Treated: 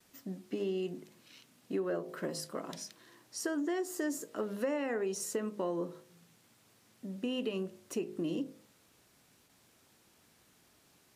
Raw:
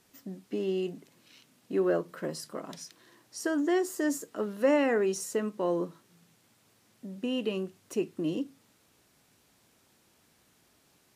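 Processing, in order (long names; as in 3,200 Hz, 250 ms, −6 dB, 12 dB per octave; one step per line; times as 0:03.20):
noise gate with hold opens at −56 dBFS
hum removal 51.84 Hz, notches 19
downward compressor 6 to 1, threshold −31 dBFS, peak gain reduction 10.5 dB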